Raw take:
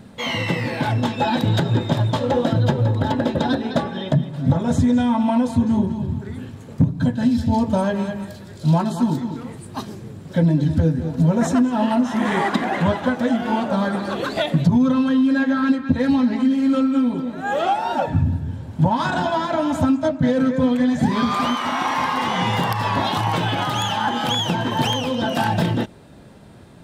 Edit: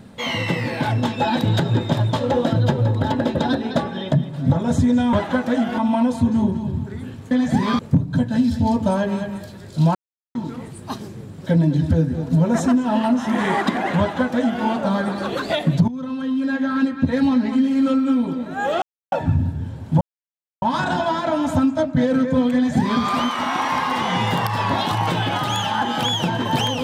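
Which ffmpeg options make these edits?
ffmpeg -i in.wav -filter_complex "[0:a]asplit=11[link_01][link_02][link_03][link_04][link_05][link_06][link_07][link_08][link_09][link_10][link_11];[link_01]atrim=end=5.132[link_12];[link_02]atrim=start=12.858:end=13.512[link_13];[link_03]atrim=start=5.128:end=6.662[link_14];[link_04]atrim=start=20.798:end=21.282[link_15];[link_05]atrim=start=6.658:end=8.82,asetpts=PTS-STARTPTS,afade=type=out:start_time=2.158:duration=0.004:curve=hsin[link_16];[link_06]atrim=start=8.82:end=9.22,asetpts=PTS-STARTPTS,volume=0[link_17];[link_07]atrim=start=9.22:end=14.75,asetpts=PTS-STARTPTS,afade=type=in:duration=0.004:curve=hsin,afade=type=out:start_time=5.526:duration=0.004:curve=hsin:silence=0.149624[link_18];[link_08]atrim=start=14.75:end=17.69,asetpts=PTS-STARTPTS,afade=type=in:duration=1.5:curve=qsin:silence=0.149624,afade=type=out:start_time=2.936:duration=0.004:curve=hsin[link_19];[link_09]atrim=start=17.69:end=17.99,asetpts=PTS-STARTPTS,volume=0[link_20];[link_10]atrim=start=17.99:end=18.88,asetpts=PTS-STARTPTS,afade=type=in:duration=0.004:curve=hsin,afade=type=out:start_time=0.886:duration=0.004:curve=hsin,apad=pad_dur=0.61[link_21];[link_11]atrim=start=18.88,asetpts=PTS-STARTPTS,afade=type=in:duration=0.004:curve=hsin[link_22];[link_12][link_13]acrossfade=duration=0.004:curve1=hsin:curve2=hsin[link_23];[link_23][link_14]acrossfade=duration=0.004:curve1=hsin:curve2=hsin[link_24];[link_24][link_15]acrossfade=duration=0.004:curve1=hsin:curve2=hsin[link_25];[link_16][link_17][link_18][link_19][link_20][link_21][link_22]concat=n=7:v=0:a=1[link_26];[link_25][link_26]acrossfade=duration=0.004:curve1=hsin:curve2=hsin" out.wav

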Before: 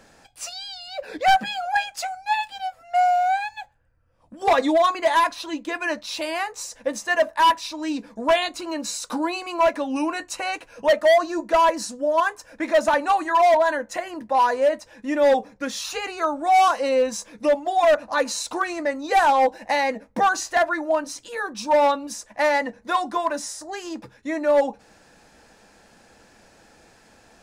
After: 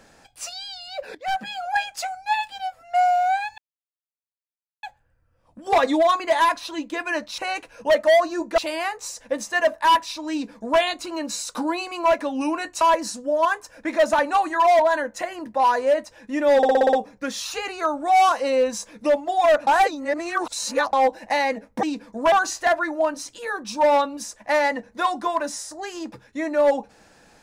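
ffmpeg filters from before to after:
ffmpeg -i in.wav -filter_complex "[0:a]asplit=16[link_01][link_02][link_03][link_04][link_05][link_06][link_07][link_08][link_09][link_10][link_11][link_12][link_13][link_14][link_15][link_16];[link_01]atrim=end=1.15,asetpts=PTS-STARTPTS,afade=type=out:start_time=1.146:duration=0.004:curve=hsin:silence=0.105925[link_17];[link_02]atrim=start=1.15:end=3.58,asetpts=PTS-STARTPTS,afade=type=in:duration=0.86:curve=qsin:silence=0.105925,afade=type=out:start_time=2.426:duration=0.004:curve=hsin,apad=pad_dur=1.25[link_18];[link_03]atrim=start=3.58:end=6.132,asetpts=PTS-STARTPTS,afade=type=in:duration=0.004:curve=hsin[link_19];[link_04]atrim=start=10.358:end=11.562[link_20];[link_05]atrim=start=6.128:end=10.362[link_21];[link_06]atrim=start=11.558:end=15.382[link_22];[link_07]atrim=start=15.318:end=15.382[link_23];[link_08]atrim=start=15.318:end=15.382[link_24];[link_09]atrim=start=15.318:end=15.382[link_25];[link_10]atrim=start=15.318:end=15.382[link_26];[link_11]atrim=start=15.318:end=15.382[link_27];[link_12]atrim=start=15.318:end=18.062[link_28];[link_13]atrim=start=18.058:end=19.322,asetpts=PTS-STARTPTS,areverse[link_29];[link_14]atrim=start=19.318:end=20.222[link_30];[link_15]atrim=start=7.858:end=8.352[link_31];[link_16]atrim=start=20.218[link_32];[link_17][link_18][link_19]concat=n=3:v=0:a=1[link_33];[link_33][link_20]acrossfade=duration=0.004:curve1=hsin:curve2=hsin[link_34];[link_34][link_21]acrossfade=duration=0.004:curve1=hsin:curve2=hsin[link_35];[link_35][link_22]acrossfade=duration=0.004:curve1=hsin:curve2=hsin[link_36];[link_36][link_23]acrossfade=duration=0.004:curve1=hsin:curve2=hsin[link_37];[link_37][link_24]acrossfade=duration=0.004:curve1=hsin:curve2=hsin[link_38];[link_38][link_25]acrossfade=duration=0.004:curve1=hsin:curve2=hsin[link_39];[link_39][link_26]acrossfade=duration=0.004:curve1=hsin:curve2=hsin[link_40];[link_40][link_27]acrossfade=duration=0.004:curve1=hsin:curve2=hsin[link_41];[link_41][link_28]acrossfade=duration=0.004:curve1=hsin:curve2=hsin[link_42];[link_42][link_29]acrossfade=duration=0.004:curve1=hsin:curve2=hsin[link_43];[link_43][link_30]acrossfade=duration=0.004:curve1=hsin:curve2=hsin[link_44];[link_44][link_31]acrossfade=duration=0.004:curve1=hsin:curve2=hsin[link_45];[link_45][link_32]acrossfade=duration=0.004:curve1=hsin:curve2=hsin" out.wav

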